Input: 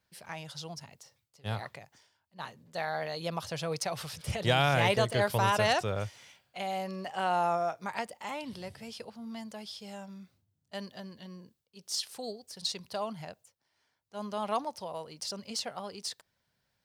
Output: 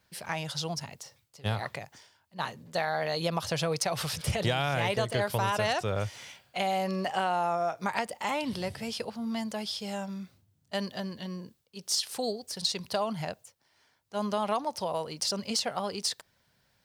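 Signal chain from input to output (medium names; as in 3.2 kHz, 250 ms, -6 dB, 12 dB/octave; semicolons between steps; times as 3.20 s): compression 5:1, threshold -34 dBFS, peak gain reduction 12 dB; trim +8.5 dB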